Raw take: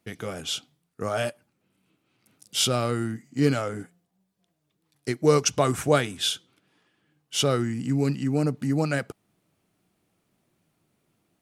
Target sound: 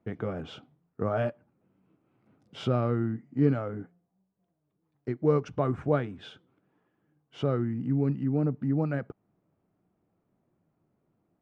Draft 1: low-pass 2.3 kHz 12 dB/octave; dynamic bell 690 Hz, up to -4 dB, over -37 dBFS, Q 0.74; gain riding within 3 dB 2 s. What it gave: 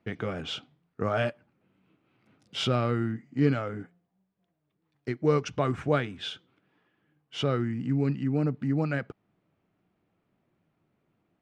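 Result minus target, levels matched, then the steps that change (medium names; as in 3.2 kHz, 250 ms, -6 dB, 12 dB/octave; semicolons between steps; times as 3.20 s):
2 kHz band +7.0 dB
change: low-pass 1.1 kHz 12 dB/octave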